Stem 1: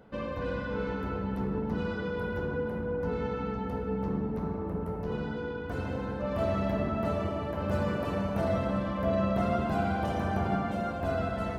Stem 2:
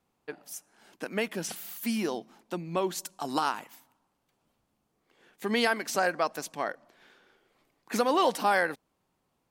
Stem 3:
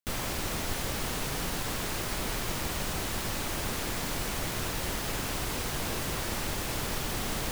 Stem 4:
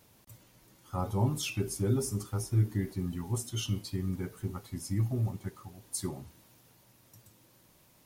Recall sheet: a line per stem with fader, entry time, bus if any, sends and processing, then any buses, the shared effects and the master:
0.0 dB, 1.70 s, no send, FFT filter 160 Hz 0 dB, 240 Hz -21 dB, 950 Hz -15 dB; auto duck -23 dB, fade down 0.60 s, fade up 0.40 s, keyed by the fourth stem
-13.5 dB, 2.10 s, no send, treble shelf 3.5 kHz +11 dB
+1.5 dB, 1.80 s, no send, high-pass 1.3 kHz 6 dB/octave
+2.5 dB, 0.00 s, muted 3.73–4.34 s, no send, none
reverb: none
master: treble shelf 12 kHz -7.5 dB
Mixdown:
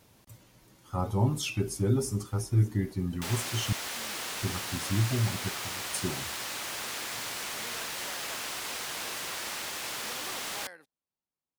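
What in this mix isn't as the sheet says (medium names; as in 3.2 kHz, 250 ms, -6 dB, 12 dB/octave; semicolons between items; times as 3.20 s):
stem 1: muted; stem 2 -13.5 dB -> -23.5 dB; stem 3: entry 1.80 s -> 3.15 s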